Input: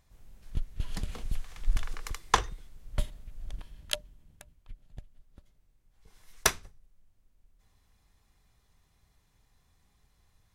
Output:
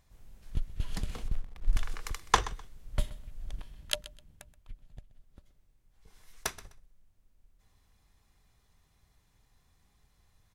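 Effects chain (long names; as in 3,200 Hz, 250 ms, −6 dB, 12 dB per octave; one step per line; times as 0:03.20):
0:01.28–0:01.73: slack as between gear wheels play −38 dBFS
0:04.84–0:06.58: downward compressor 1.5 to 1, threshold −48 dBFS, peak gain reduction 11 dB
repeating echo 127 ms, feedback 23%, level −17.5 dB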